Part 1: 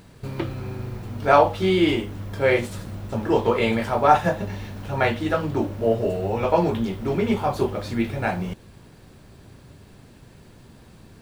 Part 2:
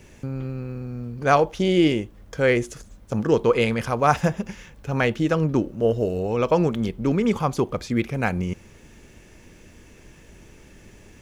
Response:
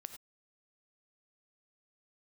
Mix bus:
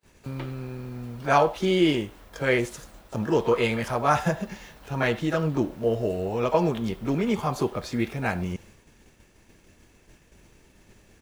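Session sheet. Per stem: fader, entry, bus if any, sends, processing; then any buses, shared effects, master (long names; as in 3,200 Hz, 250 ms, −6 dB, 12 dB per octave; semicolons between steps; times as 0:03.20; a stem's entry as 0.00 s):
−4.0 dB, 0.00 s, send −3 dB, high-pass filter 510 Hz 12 dB per octave; automatic ducking −9 dB, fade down 0.25 s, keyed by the second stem
−4.0 dB, 28 ms, polarity flipped, no send, no processing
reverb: on, pre-delay 3 ms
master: downward expander −46 dBFS; high-shelf EQ 8,400 Hz +3.5 dB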